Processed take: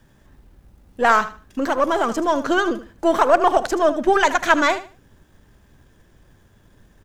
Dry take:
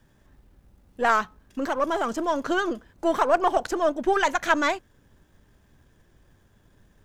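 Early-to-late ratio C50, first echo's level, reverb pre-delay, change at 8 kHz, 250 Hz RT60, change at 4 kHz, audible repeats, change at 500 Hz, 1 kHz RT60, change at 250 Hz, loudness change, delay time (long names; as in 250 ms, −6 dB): no reverb audible, −13.5 dB, no reverb audible, +5.5 dB, no reverb audible, +5.5 dB, 2, +5.5 dB, no reverb audible, +5.5 dB, +5.5 dB, 77 ms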